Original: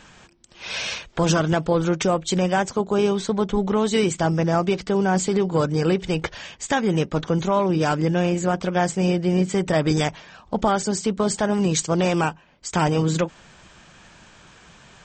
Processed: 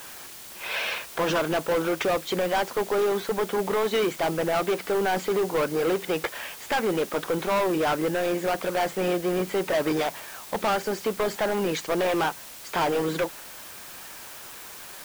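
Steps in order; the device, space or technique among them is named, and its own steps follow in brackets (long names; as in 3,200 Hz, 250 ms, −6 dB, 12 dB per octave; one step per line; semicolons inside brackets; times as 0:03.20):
aircraft radio (band-pass filter 400–2,500 Hz; hard clipping −24 dBFS, distortion −7 dB; white noise bed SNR 16 dB)
level +3.5 dB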